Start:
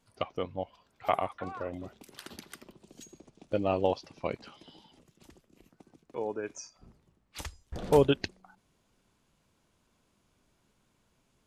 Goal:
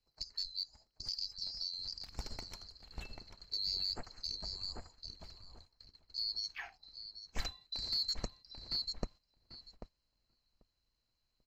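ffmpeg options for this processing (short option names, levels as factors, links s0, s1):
-filter_complex "[0:a]afftfilt=real='real(if(lt(b,736),b+184*(1-2*mod(floor(b/184),2)),b),0)':imag='imag(if(lt(b,736),b+184*(1-2*mod(floor(b/184),2)),b),0)':win_size=2048:overlap=0.75,lowshelf=f=86:g=9,asplit=2[s0][s1];[s1]adelay=790,lowpass=f=1800:p=1,volume=0.631,asplit=2[s2][s3];[s3]adelay=790,lowpass=f=1800:p=1,volume=0.32,asplit=2[s4][s5];[s5]adelay=790,lowpass=f=1800:p=1,volume=0.32,asplit=2[s6][s7];[s7]adelay=790,lowpass=f=1800:p=1,volume=0.32[s8];[s2][s4][s6][s8]amix=inputs=4:normalize=0[s9];[s0][s9]amix=inputs=2:normalize=0,alimiter=limit=0.0891:level=0:latency=1:release=95,agate=range=0.251:threshold=0.00141:ratio=16:detection=peak,asoftclip=type=tanh:threshold=0.0631,aemphasis=mode=reproduction:type=bsi,volume=1.19"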